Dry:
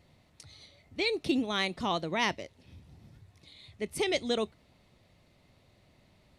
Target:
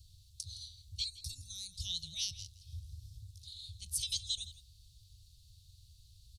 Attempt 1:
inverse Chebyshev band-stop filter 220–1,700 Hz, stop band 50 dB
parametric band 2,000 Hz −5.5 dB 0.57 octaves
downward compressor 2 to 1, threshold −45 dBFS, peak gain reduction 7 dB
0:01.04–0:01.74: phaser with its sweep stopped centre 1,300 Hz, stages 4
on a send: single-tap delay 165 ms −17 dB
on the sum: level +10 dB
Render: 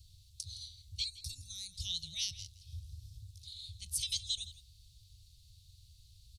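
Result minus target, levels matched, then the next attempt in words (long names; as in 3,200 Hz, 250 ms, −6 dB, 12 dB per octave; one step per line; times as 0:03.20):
2,000 Hz band +3.0 dB
inverse Chebyshev band-stop filter 220–1,700 Hz, stop band 50 dB
parametric band 2,000 Hz −14.5 dB 0.57 octaves
downward compressor 2 to 1, threshold −45 dBFS, peak gain reduction 6.5 dB
0:01.04–0:01.74: phaser with its sweep stopped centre 1,300 Hz, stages 4
on a send: single-tap delay 165 ms −17 dB
on the sum: level +10 dB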